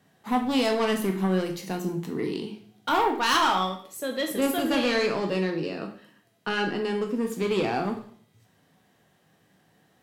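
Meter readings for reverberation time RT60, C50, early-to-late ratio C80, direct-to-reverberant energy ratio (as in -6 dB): 0.55 s, 9.0 dB, 12.5 dB, 3.5 dB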